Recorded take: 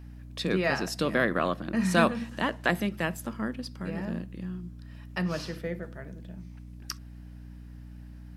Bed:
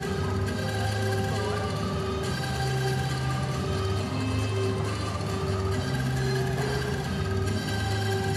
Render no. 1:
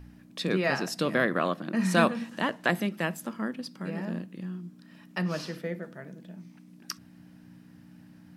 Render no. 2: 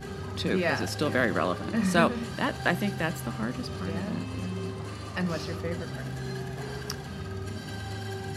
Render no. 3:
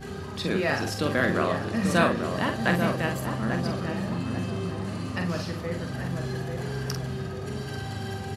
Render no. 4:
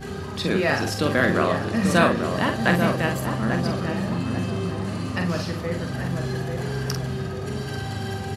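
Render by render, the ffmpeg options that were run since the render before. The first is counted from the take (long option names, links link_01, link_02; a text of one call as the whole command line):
ffmpeg -i in.wav -af "bandreject=frequency=60:width_type=h:width=4,bandreject=frequency=120:width_type=h:width=4" out.wav
ffmpeg -i in.wav -i bed.wav -filter_complex "[1:a]volume=-8.5dB[link_01];[0:a][link_01]amix=inputs=2:normalize=0" out.wav
ffmpeg -i in.wav -filter_complex "[0:a]asplit=2[link_01][link_02];[link_02]adelay=46,volume=-6dB[link_03];[link_01][link_03]amix=inputs=2:normalize=0,asplit=2[link_04][link_05];[link_05]adelay=841,lowpass=frequency=1200:poles=1,volume=-4.5dB,asplit=2[link_06][link_07];[link_07]adelay=841,lowpass=frequency=1200:poles=1,volume=0.5,asplit=2[link_08][link_09];[link_09]adelay=841,lowpass=frequency=1200:poles=1,volume=0.5,asplit=2[link_10][link_11];[link_11]adelay=841,lowpass=frequency=1200:poles=1,volume=0.5,asplit=2[link_12][link_13];[link_13]adelay=841,lowpass=frequency=1200:poles=1,volume=0.5,asplit=2[link_14][link_15];[link_15]adelay=841,lowpass=frequency=1200:poles=1,volume=0.5[link_16];[link_04][link_06][link_08][link_10][link_12][link_14][link_16]amix=inputs=7:normalize=0" out.wav
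ffmpeg -i in.wav -af "volume=4dB,alimiter=limit=-3dB:level=0:latency=1" out.wav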